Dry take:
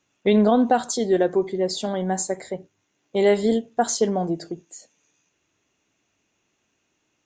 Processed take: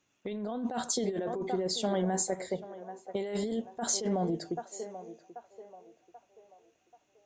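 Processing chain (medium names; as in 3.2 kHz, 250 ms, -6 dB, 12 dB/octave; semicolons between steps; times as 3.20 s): band-passed feedback delay 785 ms, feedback 45%, band-pass 760 Hz, level -14 dB; compressor with a negative ratio -24 dBFS, ratio -1; trim -7.5 dB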